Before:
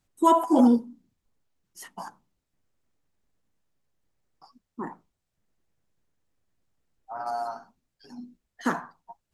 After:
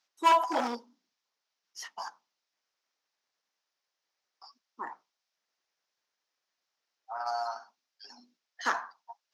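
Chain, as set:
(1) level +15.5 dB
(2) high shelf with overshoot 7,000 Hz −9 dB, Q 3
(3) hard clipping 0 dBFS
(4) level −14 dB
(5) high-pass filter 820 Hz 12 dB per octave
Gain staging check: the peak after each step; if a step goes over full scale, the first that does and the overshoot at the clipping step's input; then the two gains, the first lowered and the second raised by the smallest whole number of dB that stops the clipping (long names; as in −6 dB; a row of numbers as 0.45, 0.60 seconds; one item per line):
+8.0, +8.0, 0.0, −14.0, −11.5 dBFS
step 1, 8.0 dB
step 1 +7.5 dB, step 4 −6 dB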